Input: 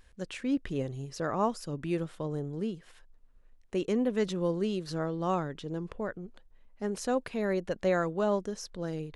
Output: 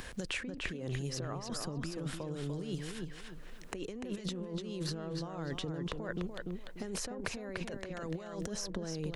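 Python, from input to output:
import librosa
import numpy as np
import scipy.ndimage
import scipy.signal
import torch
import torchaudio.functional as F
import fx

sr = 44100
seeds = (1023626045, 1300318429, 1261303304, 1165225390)

p1 = fx.over_compress(x, sr, threshold_db=-40.0, ratio=-1.0)
p2 = p1 + fx.echo_filtered(p1, sr, ms=294, feedback_pct=19, hz=4400.0, wet_db=-5.5, dry=0)
p3 = fx.band_squash(p2, sr, depth_pct=70)
y = F.gain(torch.from_numpy(p3), -1.0).numpy()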